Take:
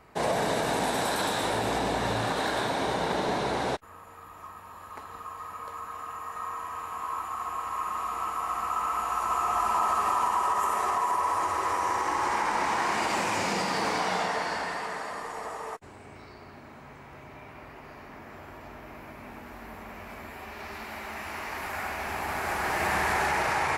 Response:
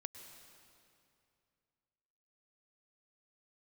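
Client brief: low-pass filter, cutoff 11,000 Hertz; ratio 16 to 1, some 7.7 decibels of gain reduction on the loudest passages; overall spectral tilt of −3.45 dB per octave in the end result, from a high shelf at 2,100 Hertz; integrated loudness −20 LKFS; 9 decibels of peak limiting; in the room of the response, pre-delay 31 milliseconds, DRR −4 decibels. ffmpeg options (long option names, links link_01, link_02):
-filter_complex "[0:a]lowpass=11000,highshelf=frequency=2100:gain=-8,acompressor=threshold=-32dB:ratio=16,alimiter=level_in=8dB:limit=-24dB:level=0:latency=1,volume=-8dB,asplit=2[link_01][link_02];[1:a]atrim=start_sample=2205,adelay=31[link_03];[link_02][link_03]afir=irnorm=-1:irlink=0,volume=8dB[link_04];[link_01][link_04]amix=inputs=2:normalize=0,volume=15.5dB"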